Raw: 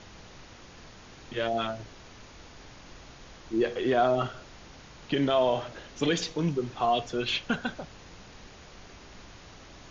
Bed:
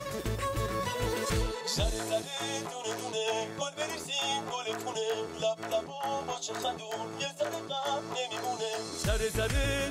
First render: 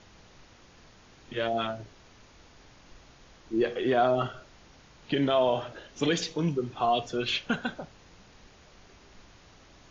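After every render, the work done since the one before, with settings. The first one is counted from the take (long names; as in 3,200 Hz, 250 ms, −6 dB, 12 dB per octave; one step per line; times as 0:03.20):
noise reduction from a noise print 6 dB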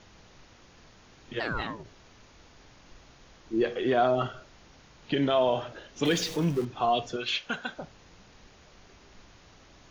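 0:01.39–0:01.83: ring modulation 1,400 Hz → 250 Hz
0:06.05–0:06.65: converter with a step at zero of −36 dBFS
0:07.16–0:07.78: low-shelf EQ 390 Hz −11.5 dB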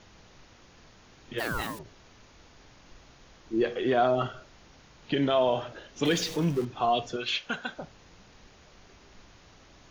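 0:01.38–0:01.79: spike at every zero crossing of −34.5 dBFS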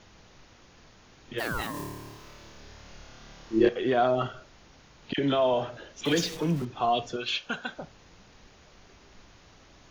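0:01.71–0:03.69: flutter between parallel walls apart 4.7 metres, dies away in 1.3 s
0:05.13–0:06.62: all-pass dispersion lows, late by 52 ms, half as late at 1,300 Hz
0:07.15–0:07.64: notch filter 2,000 Hz, Q 6.6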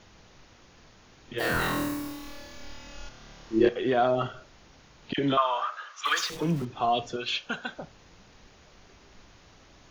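0:01.38–0:03.09: flutter between parallel walls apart 4.1 metres, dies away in 0.9 s
0:05.37–0:06.30: high-pass with resonance 1,200 Hz, resonance Q 9.3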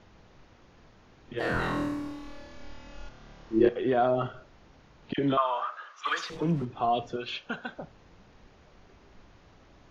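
Bessel low-pass filter 5,600 Hz, order 2
high-shelf EQ 2,000 Hz −8 dB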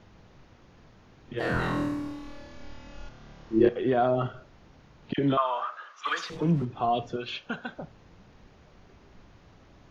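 parametric band 130 Hz +4 dB 1.9 octaves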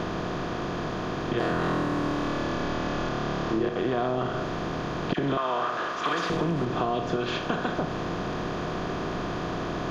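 compressor on every frequency bin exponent 0.4
downward compressor 6 to 1, threshold −23 dBFS, peak gain reduction 9.5 dB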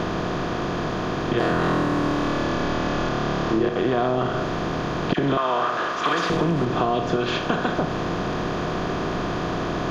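level +5 dB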